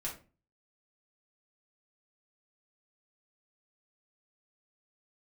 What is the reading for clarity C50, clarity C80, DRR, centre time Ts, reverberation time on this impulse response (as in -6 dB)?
8.5 dB, 14.5 dB, -4.5 dB, 22 ms, 0.35 s